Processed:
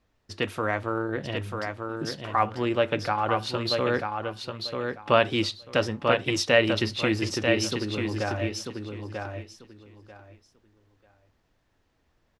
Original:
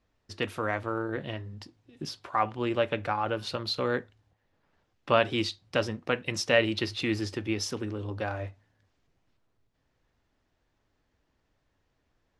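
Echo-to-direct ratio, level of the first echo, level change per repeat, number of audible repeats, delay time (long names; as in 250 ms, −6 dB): −5.0 dB, −5.0 dB, −14.0 dB, 3, 941 ms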